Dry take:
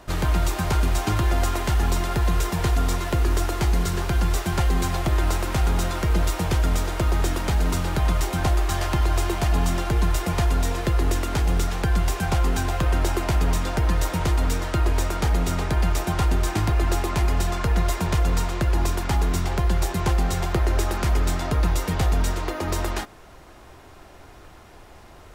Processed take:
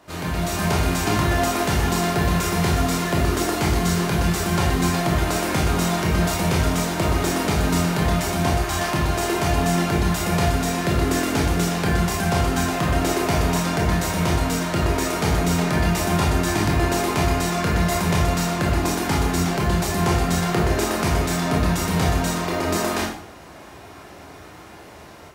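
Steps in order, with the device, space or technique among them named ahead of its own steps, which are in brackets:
far laptop microphone (convolution reverb RT60 0.60 s, pre-delay 20 ms, DRR −2 dB; high-pass filter 120 Hz 12 dB per octave; automatic gain control gain up to 7.5 dB)
level −5 dB

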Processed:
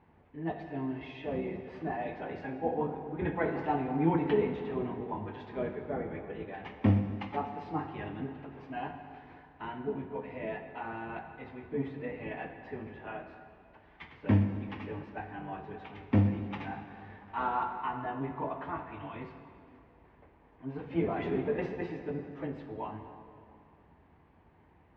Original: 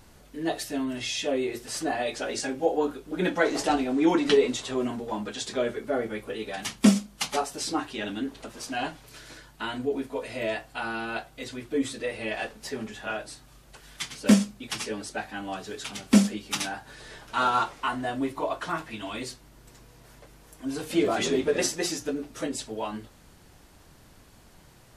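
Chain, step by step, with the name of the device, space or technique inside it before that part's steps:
sub-octave bass pedal (sub-octave generator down 1 octave, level +2 dB; loudspeaker in its box 77–2,200 Hz, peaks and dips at 120 Hz −10 dB, 210 Hz −4 dB, 570 Hz −4 dB, 880 Hz +5 dB, 1,400 Hz −7 dB)
dense smooth reverb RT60 2.5 s, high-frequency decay 0.8×, DRR 6 dB
level −7 dB

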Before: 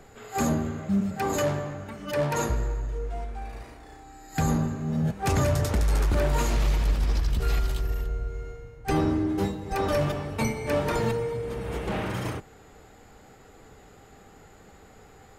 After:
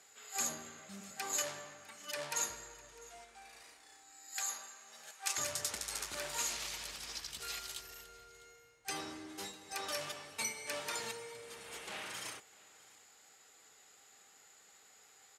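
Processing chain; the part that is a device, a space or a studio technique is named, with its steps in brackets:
0:04.34–0:05.38: high-pass filter 770 Hz 12 dB per octave
piezo pickup straight into a mixer (low-pass filter 8,700 Hz 12 dB per octave; first difference)
single-tap delay 653 ms −22 dB
level +3.5 dB

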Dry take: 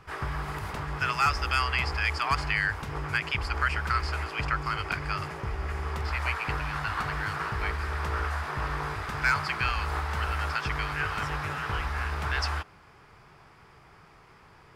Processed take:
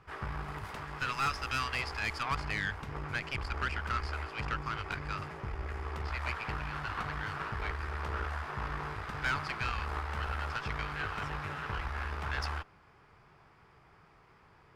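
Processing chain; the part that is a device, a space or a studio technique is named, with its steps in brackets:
0:00.64–0:02.23: spectral tilt +1.5 dB per octave
tube preamp driven hard (tube saturation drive 23 dB, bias 0.75; high-shelf EQ 5,000 Hz −8 dB)
level −1.5 dB

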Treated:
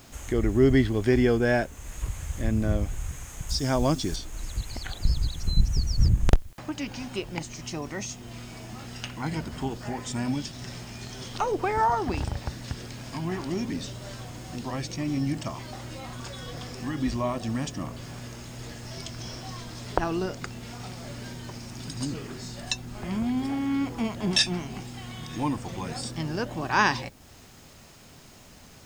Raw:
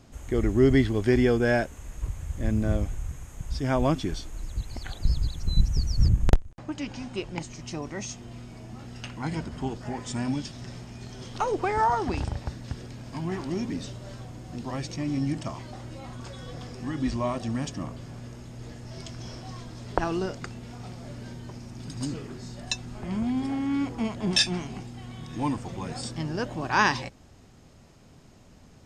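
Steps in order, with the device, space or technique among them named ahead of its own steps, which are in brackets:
noise-reduction cassette on a plain deck (one half of a high-frequency compander encoder only; tape wow and flutter 22 cents; white noise bed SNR 33 dB)
0:03.49–0:04.16: high shelf with overshoot 3,600 Hz +7.5 dB, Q 1.5

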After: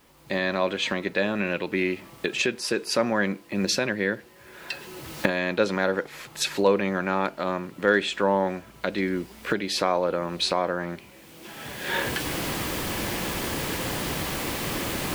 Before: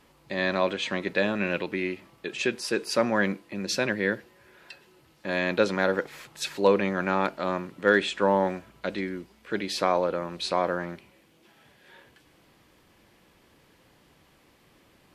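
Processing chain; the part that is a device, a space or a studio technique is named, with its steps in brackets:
cheap recorder with automatic gain (white noise bed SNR 38 dB; camcorder AGC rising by 21 dB per second)

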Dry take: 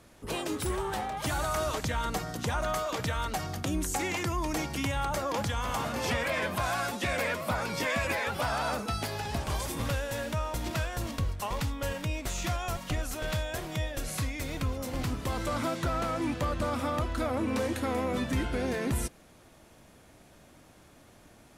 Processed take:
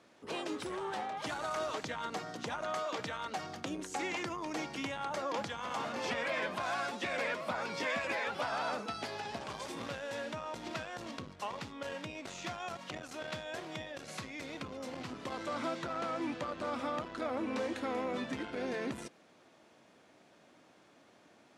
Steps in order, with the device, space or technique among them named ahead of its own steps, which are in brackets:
public-address speaker with an overloaded transformer (saturating transformer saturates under 170 Hz; band-pass filter 230–5,600 Hz)
level −4 dB

